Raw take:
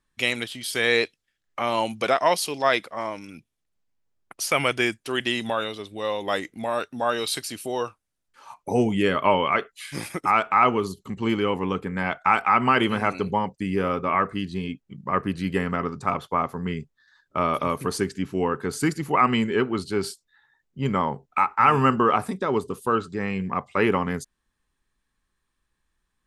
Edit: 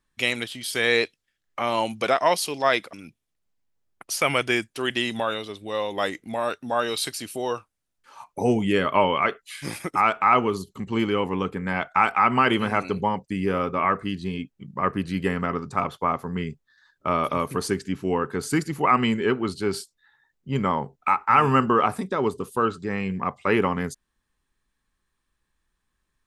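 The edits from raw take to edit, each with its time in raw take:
2.93–3.23 s: delete

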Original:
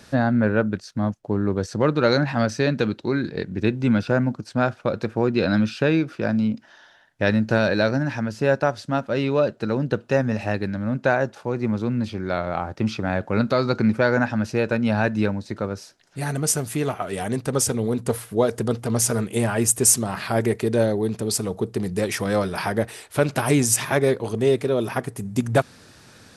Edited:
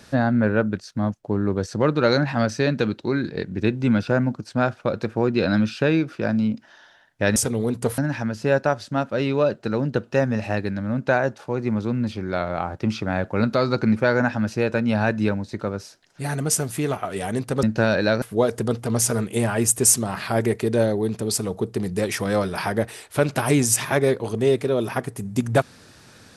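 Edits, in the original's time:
7.36–7.95 s: swap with 17.60–18.22 s

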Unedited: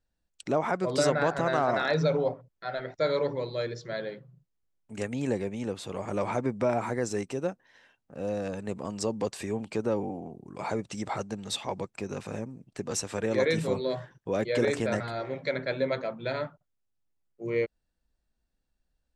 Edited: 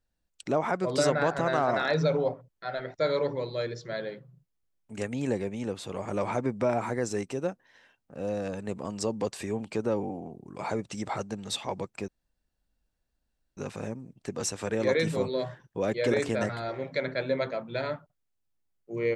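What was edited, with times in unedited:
12.08 s: insert room tone 1.49 s

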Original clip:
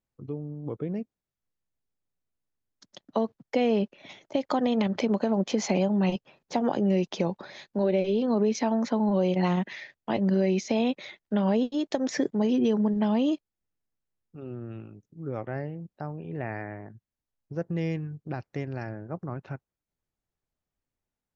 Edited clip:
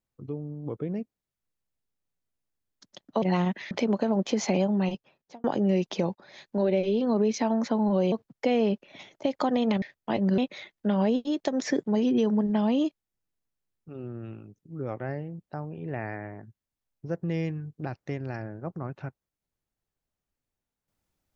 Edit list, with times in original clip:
3.22–4.92 s: swap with 9.33–9.82 s
5.90–6.65 s: fade out
7.36–7.69 s: fade in, from -21 dB
10.38–10.85 s: delete

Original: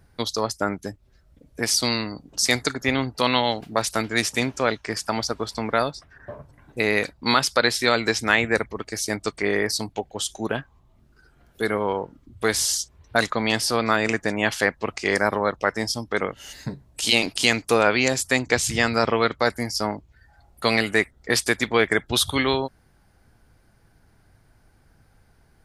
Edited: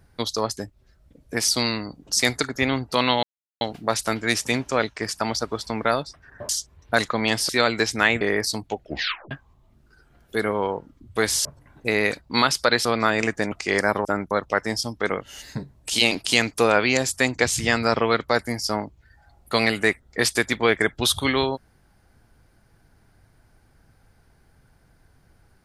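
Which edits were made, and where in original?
0.57–0.83 s: move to 15.42 s
3.49 s: insert silence 0.38 s
6.37–7.77 s: swap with 12.71–13.71 s
8.49–9.47 s: delete
10.03 s: tape stop 0.54 s
14.38–14.89 s: delete

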